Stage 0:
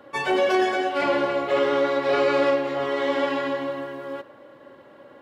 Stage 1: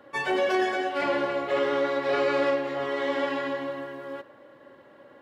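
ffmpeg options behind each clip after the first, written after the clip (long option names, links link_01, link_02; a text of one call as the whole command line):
ffmpeg -i in.wav -af "equalizer=frequency=1800:width=6.3:gain=4.5,volume=-4dB" out.wav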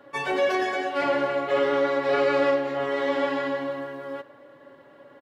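ffmpeg -i in.wav -af "aecho=1:1:7.1:0.41" out.wav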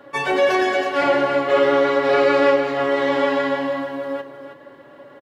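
ffmpeg -i in.wav -af "aecho=1:1:321:0.355,volume=6dB" out.wav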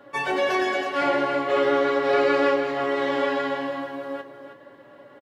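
ffmpeg -i in.wav -filter_complex "[0:a]asplit=2[link_01][link_02];[link_02]adelay=17,volume=-9dB[link_03];[link_01][link_03]amix=inputs=2:normalize=0,volume=-4.5dB" out.wav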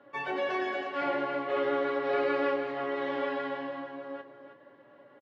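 ffmpeg -i in.wav -af "highpass=100,lowpass=3500,volume=-8dB" out.wav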